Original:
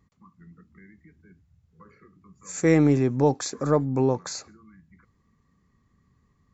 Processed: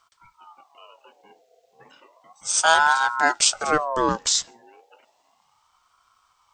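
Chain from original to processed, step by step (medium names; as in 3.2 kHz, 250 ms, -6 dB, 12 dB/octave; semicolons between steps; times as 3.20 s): resonant high shelf 2 kHz +12.5 dB, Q 1.5; ring modulator with a swept carrier 890 Hz, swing 35%, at 0.33 Hz; trim +3.5 dB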